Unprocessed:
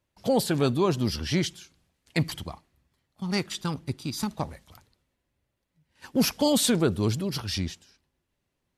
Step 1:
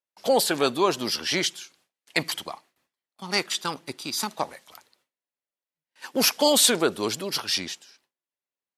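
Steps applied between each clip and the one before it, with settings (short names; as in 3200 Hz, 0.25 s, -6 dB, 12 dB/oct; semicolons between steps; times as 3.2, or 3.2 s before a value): gate with hold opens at -56 dBFS; Bessel high-pass 560 Hz, order 2; gain +7 dB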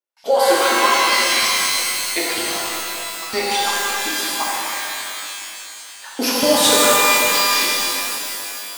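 LFO high-pass saw up 4.2 Hz 220–3500 Hz; shimmer reverb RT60 3 s, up +12 st, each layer -2 dB, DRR -7.5 dB; gain -4.5 dB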